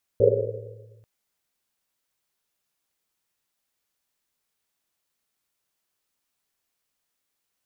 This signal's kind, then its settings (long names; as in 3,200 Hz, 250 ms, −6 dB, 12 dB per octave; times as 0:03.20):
drum after Risset length 0.84 s, pitch 110 Hz, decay 1.96 s, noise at 480 Hz, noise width 150 Hz, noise 75%